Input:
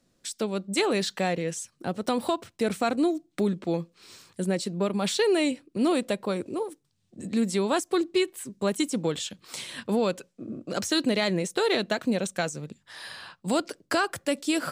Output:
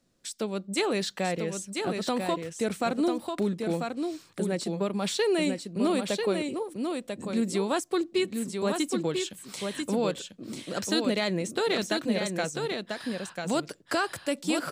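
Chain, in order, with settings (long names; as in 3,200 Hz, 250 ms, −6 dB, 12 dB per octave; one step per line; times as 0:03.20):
single-tap delay 993 ms −5 dB
level −2.5 dB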